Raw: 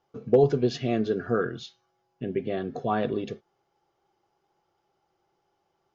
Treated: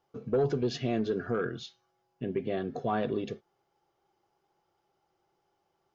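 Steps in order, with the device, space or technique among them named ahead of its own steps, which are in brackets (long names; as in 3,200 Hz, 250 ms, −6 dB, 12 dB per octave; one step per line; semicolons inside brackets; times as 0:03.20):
soft clipper into limiter (soft clipping −13 dBFS, distortion −18 dB; brickwall limiter −18.5 dBFS, peak gain reduction 4.5 dB)
level −2 dB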